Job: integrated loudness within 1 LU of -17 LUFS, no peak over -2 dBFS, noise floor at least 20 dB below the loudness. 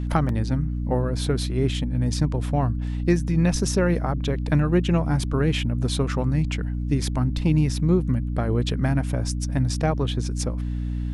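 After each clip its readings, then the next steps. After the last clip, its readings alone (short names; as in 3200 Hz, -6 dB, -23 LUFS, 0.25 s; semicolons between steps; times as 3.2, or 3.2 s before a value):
dropouts 1; longest dropout 1.6 ms; hum 60 Hz; harmonics up to 300 Hz; hum level -24 dBFS; loudness -24.0 LUFS; peak -7.0 dBFS; loudness target -17.0 LUFS
-> interpolate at 0.29, 1.6 ms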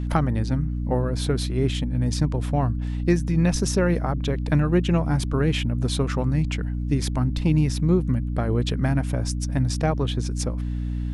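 dropouts 0; hum 60 Hz; harmonics up to 300 Hz; hum level -24 dBFS
-> notches 60/120/180/240/300 Hz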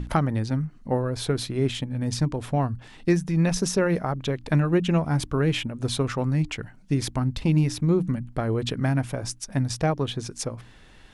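hum none; loudness -25.5 LUFS; peak -8.5 dBFS; loudness target -17.0 LUFS
-> gain +8.5 dB; limiter -2 dBFS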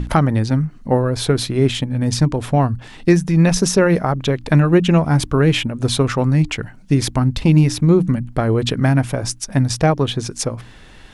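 loudness -17.0 LUFS; peak -2.0 dBFS; noise floor -42 dBFS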